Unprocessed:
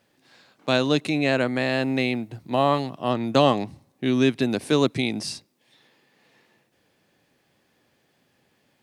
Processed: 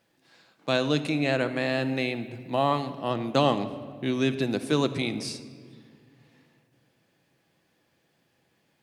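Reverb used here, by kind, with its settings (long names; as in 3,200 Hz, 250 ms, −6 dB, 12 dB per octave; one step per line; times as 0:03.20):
rectangular room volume 3,100 cubic metres, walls mixed, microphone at 0.71 metres
level −4 dB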